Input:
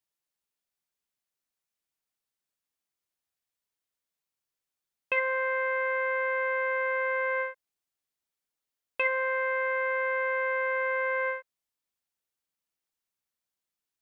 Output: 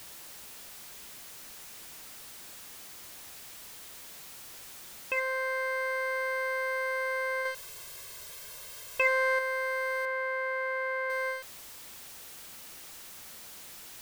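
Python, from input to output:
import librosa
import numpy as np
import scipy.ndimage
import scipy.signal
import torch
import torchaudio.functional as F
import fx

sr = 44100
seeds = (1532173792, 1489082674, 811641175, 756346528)

y = x + 0.5 * 10.0 ** (-35.0 / 20.0) * np.sign(x)
y = fx.comb(y, sr, ms=1.9, depth=0.79, at=(7.45, 9.39))
y = fx.bass_treble(y, sr, bass_db=-12, treble_db=-14, at=(10.05, 11.1))
y = y * librosa.db_to_amplitude(-4.5)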